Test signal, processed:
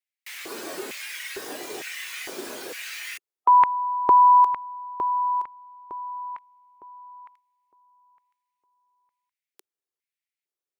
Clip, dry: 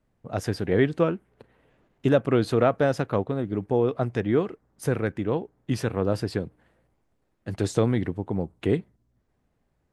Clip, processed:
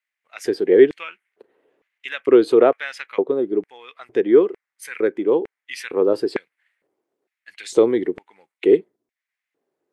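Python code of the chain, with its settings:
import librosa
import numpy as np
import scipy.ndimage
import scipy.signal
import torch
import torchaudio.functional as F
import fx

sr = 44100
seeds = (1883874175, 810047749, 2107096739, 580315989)

y = fx.noise_reduce_blind(x, sr, reduce_db=7)
y = fx.filter_lfo_highpass(y, sr, shape='square', hz=1.1, low_hz=380.0, high_hz=2100.0, q=3.5)
y = F.gain(torch.from_numpy(y), 2.0).numpy()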